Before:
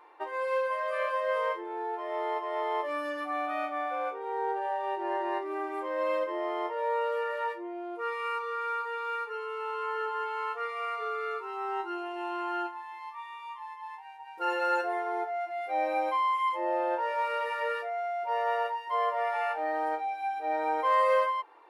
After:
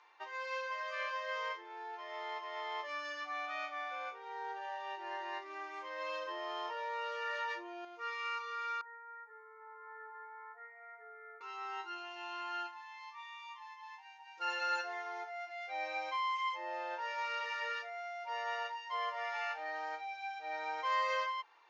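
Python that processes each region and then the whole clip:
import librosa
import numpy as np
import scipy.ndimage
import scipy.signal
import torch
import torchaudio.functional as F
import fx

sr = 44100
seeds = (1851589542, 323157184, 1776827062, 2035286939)

y = fx.chain(x, sr, fx.notch(hz=2100.0, q=18.0),
    fx.env_flatten(amount_pct=70), at=(6.09, 7.85))
y = fx.chain(y, sr, fx.steep_lowpass(hz=2000.0, slope=96),
    fx.peak_eq(hz=1400.0, db=-6.5, octaves=1.6),
    fx.fixed_phaser(hz=780.0, stages=8), at=(8.81, 11.41))
y = scipy.signal.sosfilt(scipy.signal.cheby1(6, 1.0, 6600.0, 'lowpass', fs=sr, output='sos'), y)
y = np.diff(y, prepend=0.0)
y = y * 10.0 ** (8.5 / 20.0)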